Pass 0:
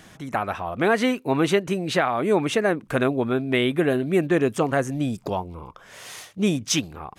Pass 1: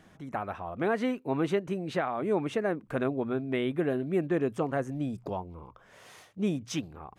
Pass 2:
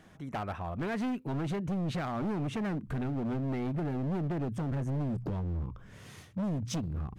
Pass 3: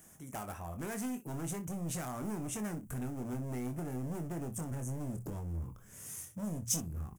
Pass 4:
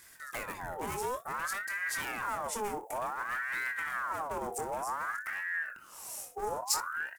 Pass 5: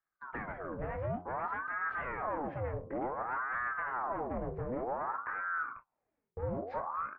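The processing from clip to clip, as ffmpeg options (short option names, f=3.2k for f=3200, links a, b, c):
-af "highshelf=f=2.2k:g=-10.5,bandreject=f=60:t=h:w=6,bandreject=f=120:t=h:w=6,volume=-7dB"
-af "asubboost=boost=9.5:cutoff=210,acompressor=threshold=-23dB:ratio=20,asoftclip=type=hard:threshold=-30dB"
-filter_complex "[0:a]aexciter=amount=15.2:drive=4.8:freq=6.2k,asplit=2[a][b];[b]aecho=0:1:24|61:0.422|0.158[c];[a][c]amix=inputs=2:normalize=0,volume=-7dB"
-af "aeval=exprs='val(0)*sin(2*PI*1200*n/s+1200*0.5/0.55*sin(2*PI*0.55*n/s))':c=same,volume=5.5dB"
-af "highpass=f=160:t=q:w=0.5412,highpass=f=160:t=q:w=1.307,lowpass=f=2.4k:t=q:w=0.5176,lowpass=f=2.4k:t=q:w=0.7071,lowpass=f=2.4k:t=q:w=1.932,afreqshift=-330,bandreject=f=88.9:t=h:w=4,bandreject=f=177.8:t=h:w=4,bandreject=f=266.7:t=h:w=4,bandreject=f=355.6:t=h:w=4,bandreject=f=444.5:t=h:w=4,bandreject=f=533.4:t=h:w=4,bandreject=f=622.3:t=h:w=4,bandreject=f=711.2:t=h:w=4,bandreject=f=800.1:t=h:w=4,bandreject=f=889:t=h:w=4,bandreject=f=977.9:t=h:w=4,bandreject=f=1.0668k:t=h:w=4,bandreject=f=1.1557k:t=h:w=4,bandreject=f=1.2446k:t=h:w=4,bandreject=f=1.3335k:t=h:w=4,bandreject=f=1.4224k:t=h:w=4,bandreject=f=1.5113k:t=h:w=4,agate=range=-30dB:threshold=-47dB:ratio=16:detection=peak"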